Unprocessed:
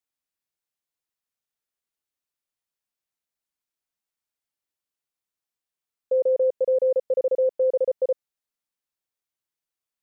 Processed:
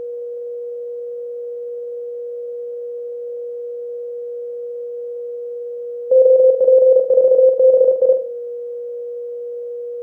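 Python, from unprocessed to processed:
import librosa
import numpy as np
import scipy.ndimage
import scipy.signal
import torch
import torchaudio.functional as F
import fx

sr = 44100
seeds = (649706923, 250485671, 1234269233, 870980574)

y = fx.bin_compress(x, sr, power=0.4)
y = fx.room_flutter(y, sr, wall_m=7.9, rt60_s=0.42)
y = y + 10.0 ** (-33.0 / 20.0) * np.sin(2.0 * np.pi * 480.0 * np.arange(len(y)) / sr)
y = y * 10.0 ** (8.5 / 20.0)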